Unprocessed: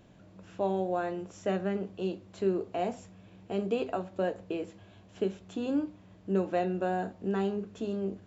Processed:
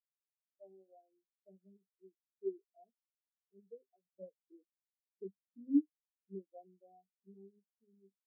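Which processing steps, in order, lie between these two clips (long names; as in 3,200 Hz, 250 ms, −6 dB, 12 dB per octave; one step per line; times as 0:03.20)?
0:04.05–0:05.81: low-shelf EQ 200 Hz +10 dB
every bin expanded away from the loudest bin 4 to 1
level −5 dB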